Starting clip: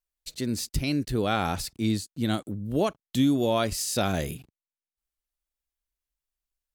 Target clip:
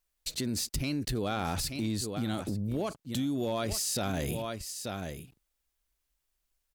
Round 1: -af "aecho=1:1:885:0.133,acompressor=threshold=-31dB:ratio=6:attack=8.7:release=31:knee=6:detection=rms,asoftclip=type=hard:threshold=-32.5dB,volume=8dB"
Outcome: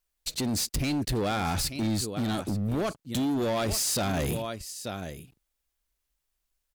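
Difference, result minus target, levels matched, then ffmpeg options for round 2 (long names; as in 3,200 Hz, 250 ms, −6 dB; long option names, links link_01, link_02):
downward compressor: peak gain reduction −7 dB
-af "aecho=1:1:885:0.133,acompressor=threshold=-39.5dB:ratio=6:attack=8.7:release=31:knee=6:detection=rms,asoftclip=type=hard:threshold=-32.5dB,volume=8dB"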